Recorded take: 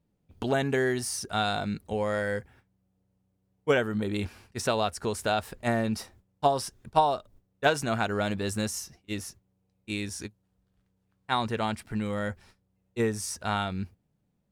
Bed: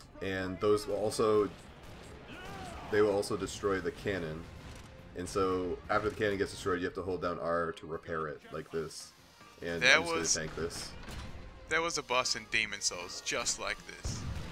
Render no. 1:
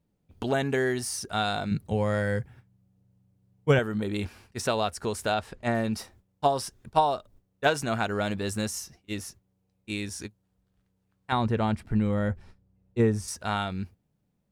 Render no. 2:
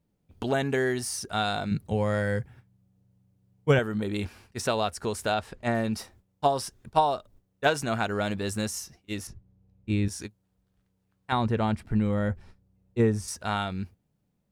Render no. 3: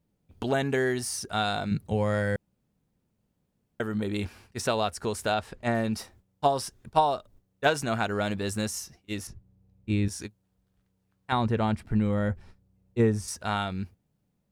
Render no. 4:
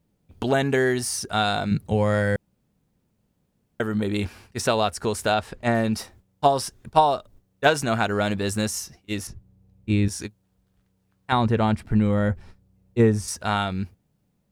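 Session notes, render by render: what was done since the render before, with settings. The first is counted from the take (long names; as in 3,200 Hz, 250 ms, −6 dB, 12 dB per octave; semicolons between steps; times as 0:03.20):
0:01.71–0:03.79: parametric band 130 Hz +13.5 dB 1 octave; 0:05.34–0:05.75: high-frequency loss of the air 53 metres; 0:11.32–0:13.28: spectral tilt −2.5 dB per octave
0:09.27–0:10.08: RIAA equalisation playback
0:02.36–0:03.80: fill with room tone
level +5 dB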